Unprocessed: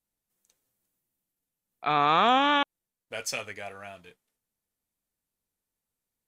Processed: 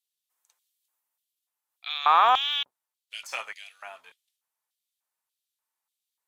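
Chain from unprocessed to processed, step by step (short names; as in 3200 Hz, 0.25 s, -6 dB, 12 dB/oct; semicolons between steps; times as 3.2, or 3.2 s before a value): octaver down 1 oct, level +3 dB; de-esser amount 80%; LFO high-pass square 1.7 Hz 950–3400 Hz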